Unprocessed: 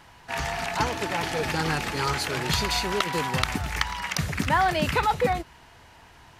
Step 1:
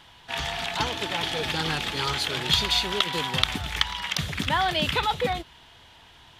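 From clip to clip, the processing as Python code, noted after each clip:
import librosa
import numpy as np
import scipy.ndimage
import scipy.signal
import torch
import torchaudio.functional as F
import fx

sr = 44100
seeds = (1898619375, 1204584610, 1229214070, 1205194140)

y = fx.peak_eq(x, sr, hz=3400.0, db=14.0, octaves=0.51)
y = y * librosa.db_to_amplitude(-3.0)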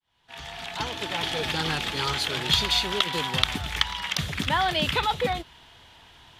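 y = fx.fade_in_head(x, sr, length_s=1.29)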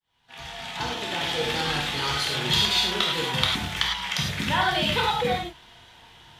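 y = fx.rev_gated(x, sr, seeds[0], gate_ms=130, shape='flat', drr_db=-2.5)
y = y * librosa.db_to_amplitude(-3.0)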